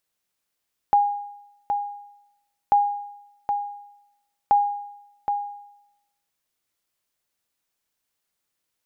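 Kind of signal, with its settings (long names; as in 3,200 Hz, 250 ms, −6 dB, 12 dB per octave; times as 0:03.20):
ping with an echo 817 Hz, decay 0.85 s, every 1.79 s, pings 3, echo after 0.77 s, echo −7 dB −11 dBFS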